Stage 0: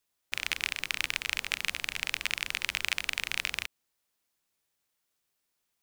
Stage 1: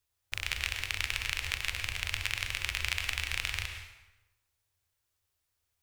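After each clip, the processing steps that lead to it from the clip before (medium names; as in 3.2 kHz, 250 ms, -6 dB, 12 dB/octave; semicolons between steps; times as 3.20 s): resonant low shelf 130 Hz +11.5 dB, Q 3; plate-style reverb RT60 1 s, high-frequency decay 0.8×, pre-delay 90 ms, DRR 5 dB; trim -2.5 dB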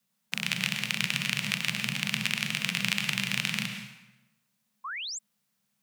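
frequency shift +120 Hz; painted sound rise, 4.84–5.19 s, 1–8 kHz -40 dBFS; trim +4 dB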